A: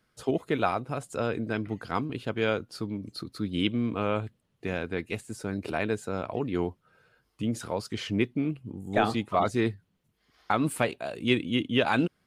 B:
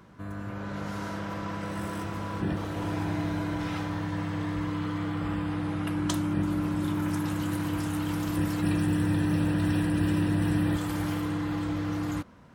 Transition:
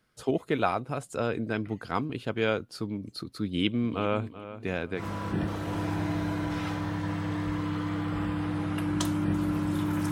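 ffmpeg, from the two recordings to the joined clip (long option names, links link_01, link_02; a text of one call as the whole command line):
ffmpeg -i cue0.wav -i cue1.wav -filter_complex "[0:a]asplit=3[link_01][link_02][link_03];[link_01]afade=type=out:start_time=3.82:duration=0.02[link_04];[link_02]asplit=2[link_05][link_06];[link_06]adelay=384,lowpass=frequency=3600:poles=1,volume=-13.5dB,asplit=2[link_07][link_08];[link_08]adelay=384,lowpass=frequency=3600:poles=1,volume=0.26,asplit=2[link_09][link_10];[link_10]adelay=384,lowpass=frequency=3600:poles=1,volume=0.26[link_11];[link_05][link_07][link_09][link_11]amix=inputs=4:normalize=0,afade=type=in:start_time=3.82:duration=0.02,afade=type=out:start_time=5.04:duration=0.02[link_12];[link_03]afade=type=in:start_time=5.04:duration=0.02[link_13];[link_04][link_12][link_13]amix=inputs=3:normalize=0,apad=whole_dur=10.11,atrim=end=10.11,atrim=end=5.04,asetpts=PTS-STARTPTS[link_14];[1:a]atrim=start=2.03:end=7.2,asetpts=PTS-STARTPTS[link_15];[link_14][link_15]acrossfade=duration=0.1:curve1=tri:curve2=tri" out.wav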